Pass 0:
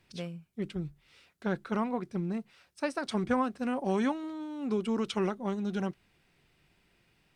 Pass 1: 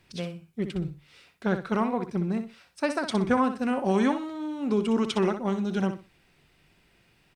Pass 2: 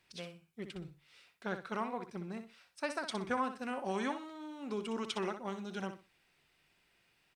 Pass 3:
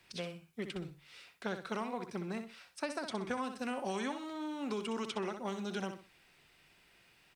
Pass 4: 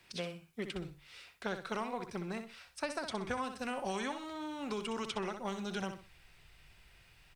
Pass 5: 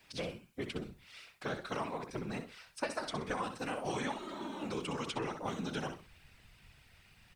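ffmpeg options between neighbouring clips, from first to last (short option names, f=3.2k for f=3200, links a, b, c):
-af "aecho=1:1:62|124|186:0.335|0.077|0.0177,volume=5dB"
-af "lowshelf=f=430:g=-11,volume=-6.5dB"
-filter_complex "[0:a]acrossover=split=190|850|2700[a][b][c][d];[a]acompressor=threshold=-57dB:ratio=4[e];[b]acompressor=threshold=-45dB:ratio=4[f];[c]acompressor=threshold=-53dB:ratio=4[g];[d]acompressor=threshold=-54dB:ratio=4[h];[e][f][g][h]amix=inputs=4:normalize=0,volume=7dB"
-af "asubboost=boost=9:cutoff=84,volume=1.5dB"
-af "afftfilt=real='hypot(re,im)*cos(2*PI*random(0))':imag='hypot(re,im)*sin(2*PI*random(1))':win_size=512:overlap=0.75,volume=6dB"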